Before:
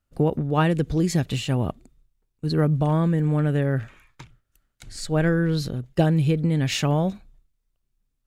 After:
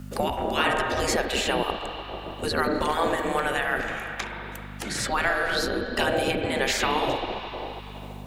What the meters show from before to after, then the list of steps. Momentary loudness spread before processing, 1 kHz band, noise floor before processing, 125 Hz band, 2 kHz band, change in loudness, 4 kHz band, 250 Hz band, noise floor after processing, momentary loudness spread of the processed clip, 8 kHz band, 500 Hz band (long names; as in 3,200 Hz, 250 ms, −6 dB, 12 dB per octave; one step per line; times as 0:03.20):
7 LU, +6.0 dB, −76 dBFS, −16.0 dB, +8.5 dB, −3.0 dB, +5.5 dB, −8.0 dB, −39 dBFS, 12 LU, +4.0 dB, +0.5 dB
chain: spring reverb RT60 1.7 s, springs 31/41/47 ms, chirp 40 ms, DRR 5 dB
gate on every frequency bin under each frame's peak −15 dB weak
mains hum 50 Hz, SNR 25 dB
multiband upward and downward compressor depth 70%
level +8 dB